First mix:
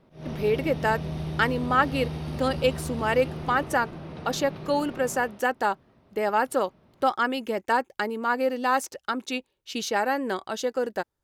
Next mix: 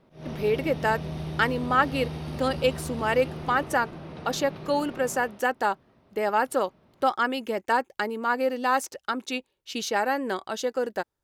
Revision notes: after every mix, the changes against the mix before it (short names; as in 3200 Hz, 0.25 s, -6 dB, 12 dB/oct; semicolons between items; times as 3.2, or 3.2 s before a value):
master: add low shelf 190 Hz -3 dB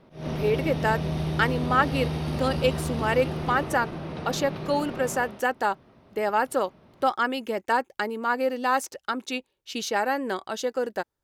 background +5.5 dB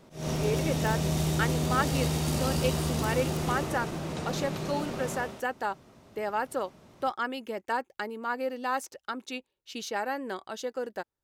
speech -6.5 dB; background: remove running mean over 6 samples